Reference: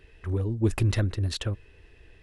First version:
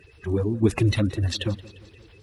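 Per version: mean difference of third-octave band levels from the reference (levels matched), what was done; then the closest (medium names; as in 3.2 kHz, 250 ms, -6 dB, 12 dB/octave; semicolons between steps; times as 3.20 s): 3.5 dB: coarse spectral quantiser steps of 30 dB; high-pass 66 Hz; modulated delay 174 ms, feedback 55%, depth 87 cents, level -19.5 dB; trim +4.5 dB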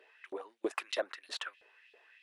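10.0 dB: Bessel high-pass 370 Hz, order 4; treble shelf 4.3 kHz -10 dB; LFO high-pass saw up 3.1 Hz 480–3700 Hz; trim -2 dB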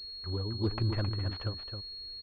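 6.0 dB: delay 266 ms -6.5 dB; dynamic bell 1.1 kHz, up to +7 dB, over -51 dBFS, Q 1.5; class-D stage that switches slowly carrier 4.3 kHz; trim -7.5 dB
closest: first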